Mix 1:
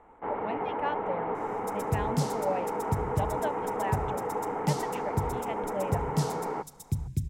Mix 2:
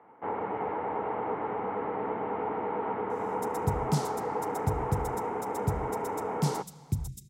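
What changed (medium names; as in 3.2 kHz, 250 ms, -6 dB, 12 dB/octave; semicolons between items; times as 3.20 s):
speech: muted; second sound: entry +1.75 s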